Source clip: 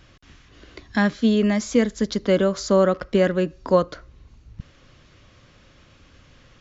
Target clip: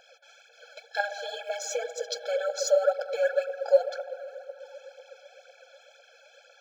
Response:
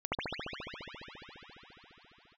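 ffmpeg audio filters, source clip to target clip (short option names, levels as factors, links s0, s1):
-filter_complex "[0:a]acompressor=threshold=0.0891:ratio=6,asplit=2[s0][s1];[s1]equalizer=f=730:w=0.45:g=6[s2];[1:a]atrim=start_sample=2205[s3];[s2][s3]afir=irnorm=-1:irlink=0,volume=0.0708[s4];[s0][s4]amix=inputs=2:normalize=0,aphaser=in_gain=1:out_gain=1:delay=3.7:decay=0.66:speed=2:type=triangular,afftfilt=real='re*eq(mod(floor(b*sr/1024/440),2),1)':imag='im*eq(mod(floor(b*sr/1024/440),2),1)':win_size=1024:overlap=0.75"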